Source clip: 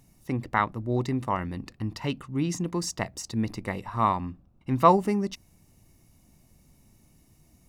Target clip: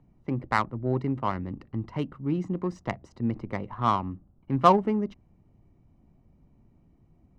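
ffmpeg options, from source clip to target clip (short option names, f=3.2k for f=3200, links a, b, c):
-filter_complex "[0:a]acrossover=split=130[a][b];[b]adynamicsmooth=sensitivity=1:basefreq=1.3k[c];[a][c]amix=inputs=2:normalize=0,asetrate=45938,aresample=44100"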